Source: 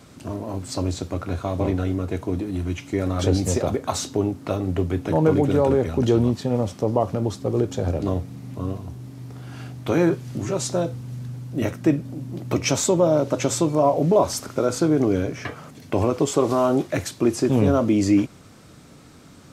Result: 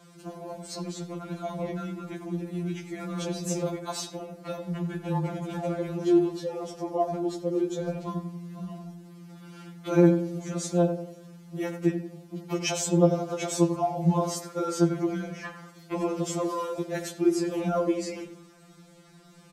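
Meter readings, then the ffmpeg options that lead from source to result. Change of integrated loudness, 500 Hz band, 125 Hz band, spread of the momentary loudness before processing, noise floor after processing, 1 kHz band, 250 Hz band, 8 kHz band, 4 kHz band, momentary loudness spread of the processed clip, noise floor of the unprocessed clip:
−6.0 dB, −7.0 dB, −7.0 dB, 14 LU, −53 dBFS, −6.0 dB, −5.5 dB, −6.5 dB, −6.0 dB, 17 LU, −47 dBFS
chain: -filter_complex "[0:a]asplit=2[link_01][link_02];[link_02]adelay=92,lowpass=frequency=1500:poles=1,volume=-8.5dB,asplit=2[link_03][link_04];[link_04]adelay=92,lowpass=frequency=1500:poles=1,volume=0.46,asplit=2[link_05][link_06];[link_06]adelay=92,lowpass=frequency=1500:poles=1,volume=0.46,asplit=2[link_07][link_08];[link_08]adelay=92,lowpass=frequency=1500:poles=1,volume=0.46,asplit=2[link_09][link_10];[link_10]adelay=92,lowpass=frequency=1500:poles=1,volume=0.46[link_11];[link_01][link_03][link_05][link_07][link_09][link_11]amix=inputs=6:normalize=0,afftfilt=real='re*2.83*eq(mod(b,8),0)':imag='im*2.83*eq(mod(b,8),0)':win_size=2048:overlap=0.75,volume=-4dB"

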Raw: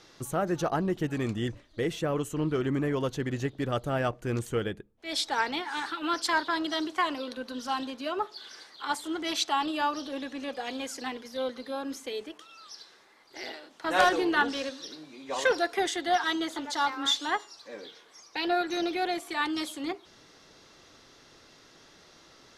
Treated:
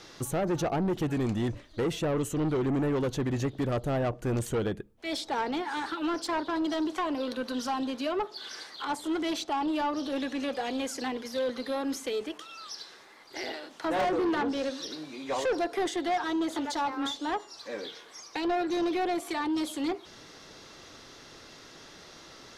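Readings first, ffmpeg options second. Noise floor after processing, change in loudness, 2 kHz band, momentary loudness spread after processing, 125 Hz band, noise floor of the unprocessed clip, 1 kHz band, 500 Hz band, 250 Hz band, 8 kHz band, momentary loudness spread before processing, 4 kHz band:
−51 dBFS, −1.0 dB, −6.0 dB, 18 LU, +1.5 dB, −57 dBFS, −2.0 dB, +1.0 dB, +2.5 dB, −1.5 dB, 14 LU, −4.5 dB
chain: -filter_complex "[0:a]acrossover=split=840[link_01][link_02];[link_02]acompressor=threshold=-41dB:ratio=5[link_03];[link_01][link_03]amix=inputs=2:normalize=0,asoftclip=type=tanh:threshold=-30dB,volume=6dB"

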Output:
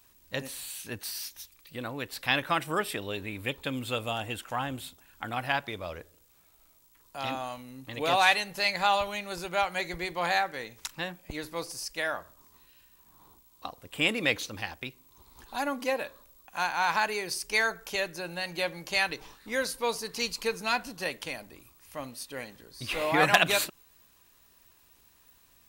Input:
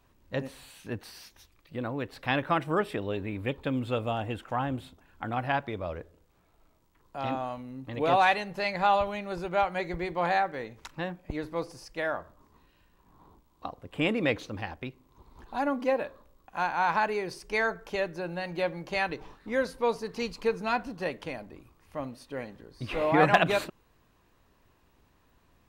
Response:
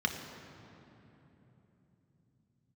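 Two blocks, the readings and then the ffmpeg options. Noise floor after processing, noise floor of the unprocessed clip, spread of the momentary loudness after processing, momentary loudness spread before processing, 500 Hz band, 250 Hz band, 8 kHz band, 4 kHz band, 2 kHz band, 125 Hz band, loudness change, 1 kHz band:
−62 dBFS, −66 dBFS, 16 LU, 16 LU, −3.5 dB, −4.5 dB, +13.5 dB, +8.0 dB, +3.0 dB, −5.0 dB, 0.0 dB, −1.5 dB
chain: -af "crystalizer=i=8:c=0,volume=-5dB"

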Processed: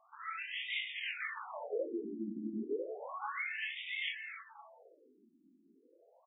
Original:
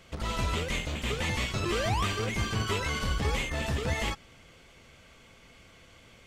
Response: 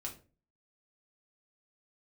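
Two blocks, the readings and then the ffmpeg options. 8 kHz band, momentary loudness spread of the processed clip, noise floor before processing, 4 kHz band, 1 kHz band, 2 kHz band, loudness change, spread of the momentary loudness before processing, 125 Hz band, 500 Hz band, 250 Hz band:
below −40 dB, 7 LU, −56 dBFS, −9.0 dB, −10.5 dB, −5.5 dB, −9.0 dB, 4 LU, below −25 dB, −7.0 dB, −7.0 dB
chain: -filter_complex "[0:a]flanger=delay=17.5:depth=6.7:speed=1.4,asplit=2[link_01][link_02];[link_02]adelay=259,lowpass=frequency=3000:poles=1,volume=-6dB,asplit=2[link_03][link_04];[link_04]adelay=259,lowpass=frequency=3000:poles=1,volume=0.42,asplit=2[link_05][link_06];[link_06]adelay=259,lowpass=frequency=3000:poles=1,volume=0.42,asplit=2[link_07][link_08];[link_08]adelay=259,lowpass=frequency=3000:poles=1,volume=0.42,asplit=2[link_09][link_10];[link_10]adelay=259,lowpass=frequency=3000:poles=1,volume=0.42[link_11];[link_01][link_03][link_05][link_07][link_09][link_11]amix=inputs=6:normalize=0,afftfilt=real='re*between(b*sr/1024,250*pow(2700/250,0.5+0.5*sin(2*PI*0.32*pts/sr))/1.41,250*pow(2700/250,0.5+0.5*sin(2*PI*0.32*pts/sr))*1.41)':imag='im*between(b*sr/1024,250*pow(2700/250,0.5+0.5*sin(2*PI*0.32*pts/sr))/1.41,250*pow(2700/250,0.5+0.5*sin(2*PI*0.32*pts/sr))*1.41)':win_size=1024:overlap=0.75,volume=1dB"

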